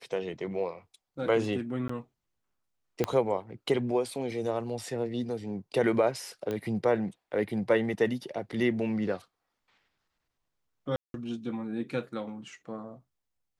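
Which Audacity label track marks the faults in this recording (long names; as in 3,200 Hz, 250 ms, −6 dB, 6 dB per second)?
1.880000	1.890000	drop-out 14 ms
3.040000	3.040000	click −13 dBFS
6.510000	6.510000	click −21 dBFS
10.960000	11.140000	drop-out 182 ms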